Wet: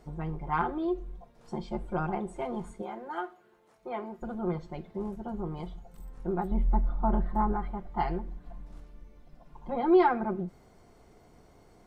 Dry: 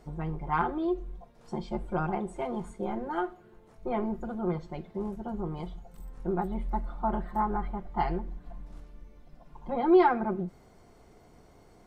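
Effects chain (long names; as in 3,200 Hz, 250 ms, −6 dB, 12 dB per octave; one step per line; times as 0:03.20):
0:02.82–0:04.22: high-pass filter 640 Hz 6 dB per octave
0:06.51–0:07.53: spectral tilt −2 dB per octave
level −1 dB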